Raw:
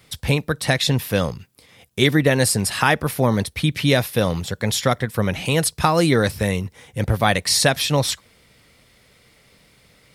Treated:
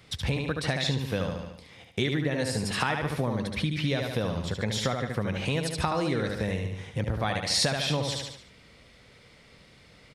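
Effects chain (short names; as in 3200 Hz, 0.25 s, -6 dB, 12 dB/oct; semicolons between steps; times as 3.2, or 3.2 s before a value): tape spacing loss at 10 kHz 23 dB; feedback echo 73 ms, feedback 43%, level -5 dB; compressor 4:1, threshold -27 dBFS, peak gain reduction 14.5 dB; high shelf 3400 Hz +12 dB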